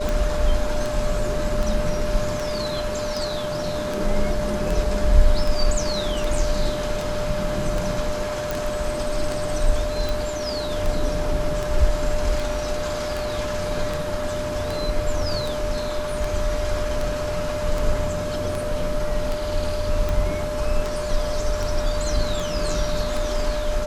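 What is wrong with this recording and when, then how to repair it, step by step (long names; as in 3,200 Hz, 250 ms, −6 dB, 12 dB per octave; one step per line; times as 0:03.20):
scratch tick 78 rpm
whistle 600 Hz −26 dBFS
0:08.51: click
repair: click removal
notch filter 600 Hz, Q 30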